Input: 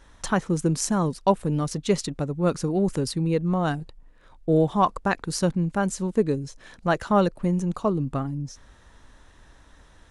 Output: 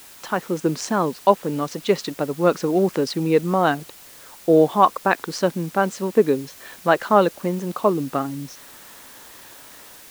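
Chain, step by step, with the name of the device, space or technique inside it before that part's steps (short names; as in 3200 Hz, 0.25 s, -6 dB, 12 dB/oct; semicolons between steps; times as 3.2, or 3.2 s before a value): dictaphone (BPF 300–4100 Hz; AGC gain up to 9 dB; wow and flutter; white noise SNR 23 dB)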